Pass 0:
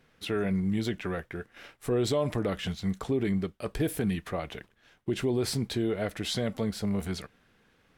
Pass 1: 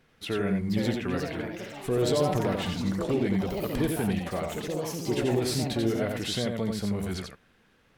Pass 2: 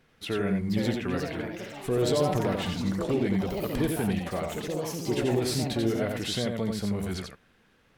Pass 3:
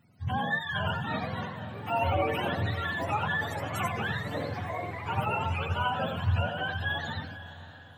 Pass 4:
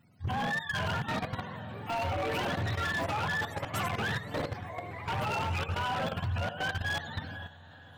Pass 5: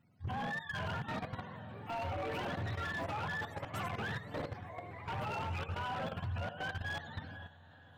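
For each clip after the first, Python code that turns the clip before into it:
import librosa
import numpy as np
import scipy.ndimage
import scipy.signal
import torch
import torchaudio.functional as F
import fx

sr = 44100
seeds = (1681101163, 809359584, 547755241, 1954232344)

y1 = x + 10.0 ** (-4.0 / 20.0) * np.pad(x, (int(88 * sr / 1000.0), 0))[:len(x)]
y1 = fx.echo_pitch(y1, sr, ms=528, semitones=4, count=3, db_per_echo=-6.0)
y2 = y1
y3 = fx.octave_mirror(y2, sr, pivot_hz=580.0)
y3 = fx.echo_diffused(y3, sr, ms=514, feedback_pct=46, wet_db=-14.0)
y4 = fx.level_steps(y3, sr, step_db=11)
y4 = 10.0 ** (-29.0 / 20.0) * (np.abs((y4 / 10.0 ** (-29.0 / 20.0) + 3.0) % 4.0 - 2.0) - 1.0)
y4 = y4 * librosa.db_to_amplitude(3.0)
y5 = fx.high_shelf(y4, sr, hz=3700.0, db=-7.0)
y5 = y5 * librosa.db_to_amplitude(-6.0)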